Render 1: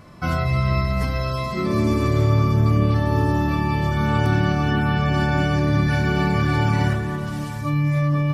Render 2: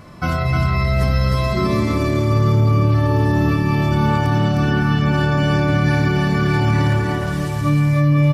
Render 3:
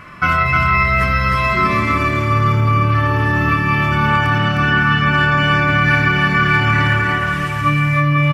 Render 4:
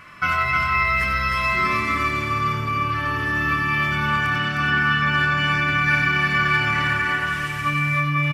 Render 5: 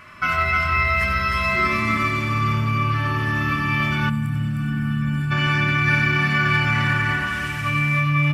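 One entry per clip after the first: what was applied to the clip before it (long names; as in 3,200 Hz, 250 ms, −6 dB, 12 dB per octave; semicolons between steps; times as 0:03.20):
brickwall limiter −15 dBFS, peak gain reduction 7.5 dB; on a send: single-tap delay 308 ms −4 dB; on the sum: level +4.5 dB
flat-topped bell 1,800 Hz +13.5 dB; double-tracking delay 26 ms −13 dB; level −2 dB
tilt shelving filter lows −4.5 dB, about 1,200 Hz; single-tap delay 95 ms −7.5 dB; level −6.5 dB
loose part that buzzes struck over −31 dBFS, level −31 dBFS; on a send at −8 dB: convolution reverb RT60 1.2 s, pre-delay 3 ms; on the sum: gain on a spectral selection 0:04.09–0:05.31, 280–7,000 Hz −15 dB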